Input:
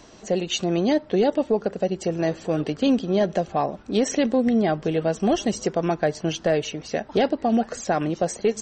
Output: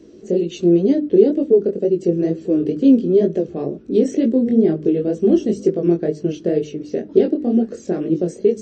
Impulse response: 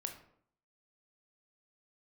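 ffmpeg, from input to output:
-filter_complex "[0:a]highpass=f=110:p=1,lowshelf=f=570:t=q:w=3:g=13.5,bandreject=f=50:t=h:w=6,bandreject=f=100:t=h:w=6,bandreject=f=150:t=h:w=6,bandreject=f=200:t=h:w=6,bandreject=f=250:t=h:w=6,bandreject=f=300:t=h:w=6,flanger=delay=18:depth=5.6:speed=2.1,asplit=2[a][b];[1:a]atrim=start_sample=2205,atrim=end_sample=3969,asetrate=66150,aresample=44100[c];[b][c]afir=irnorm=-1:irlink=0,volume=-5.5dB[d];[a][d]amix=inputs=2:normalize=0,volume=-8.5dB"

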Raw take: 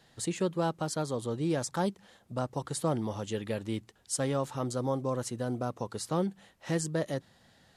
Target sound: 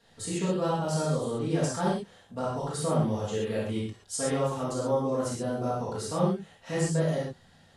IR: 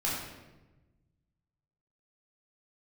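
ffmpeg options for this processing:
-filter_complex "[1:a]atrim=start_sample=2205,atrim=end_sample=3528,asetrate=24255,aresample=44100[a];[0:a][a]afir=irnorm=-1:irlink=0,volume=-7dB"

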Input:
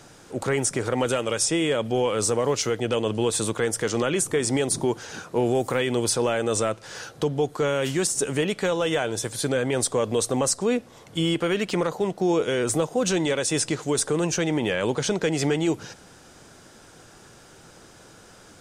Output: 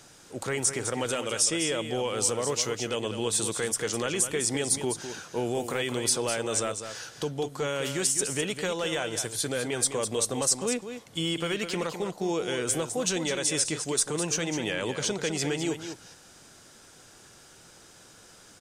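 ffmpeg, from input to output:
-af "highshelf=f=2.1k:g=8,aecho=1:1:205:0.355,volume=-7.5dB"

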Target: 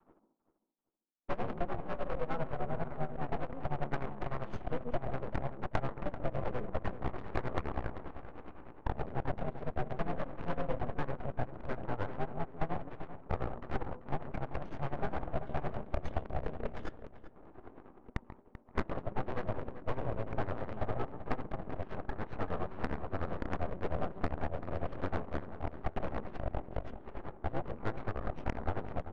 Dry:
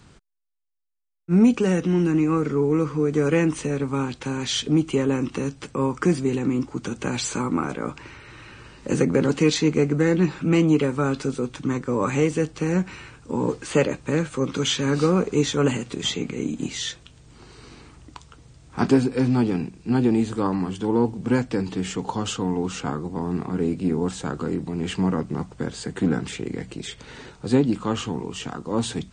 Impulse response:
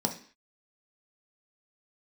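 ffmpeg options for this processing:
-filter_complex "[0:a]adynamicequalizer=threshold=0.0224:dfrequency=510:dqfactor=1.2:tfrequency=510:tqfactor=1.2:attack=5:release=100:ratio=0.375:range=3:mode=cutabove:tftype=bell,asplit=2[a][b];[b]alimiter=limit=-16.5dB:level=0:latency=1:release=26,volume=-1dB[c];[a][c]amix=inputs=2:normalize=0,highshelf=f=1.6k:t=q:w=1.5:g=-7,acrusher=bits=3:mode=log:mix=0:aa=0.000001,highpass=f=380:t=q:w=0.5412,highpass=f=380:t=q:w=1.307,lowpass=f=3.3k:t=q:w=0.5176,lowpass=f=3.3k:t=q:w=0.7071,lowpass=f=3.3k:t=q:w=1.932,afreqshift=-63,aeval=exprs='(tanh(7.08*val(0)+0.5)-tanh(0.5))/7.08':c=same,acompressor=threshold=-34dB:ratio=6,tremolo=f=9.9:d=0.7,asplit=2[d][e];[1:a]atrim=start_sample=2205,adelay=136[f];[e][f]afir=irnorm=-1:irlink=0,volume=-20dB[g];[d][g]amix=inputs=2:normalize=0,aeval=exprs='0.0794*(cos(1*acos(clip(val(0)/0.0794,-1,1)))-cos(1*PI/2))+0.0398*(cos(3*acos(clip(val(0)/0.0794,-1,1)))-cos(3*PI/2))+0.0251*(cos(4*acos(clip(val(0)/0.0794,-1,1)))-cos(4*PI/2))+0.0141*(cos(8*acos(clip(val(0)/0.0794,-1,1)))-cos(8*PI/2))':c=same,adynamicsmooth=sensitivity=1.5:basefreq=770,asplit=2[h][i];[i]adelay=388,lowpass=f=2.5k:p=1,volume=-12dB,asplit=2[j][k];[k]adelay=388,lowpass=f=2.5k:p=1,volume=0.25,asplit=2[l][m];[m]adelay=388,lowpass=f=2.5k:p=1,volume=0.25[n];[h][j][l][n]amix=inputs=4:normalize=0,volume=4dB"

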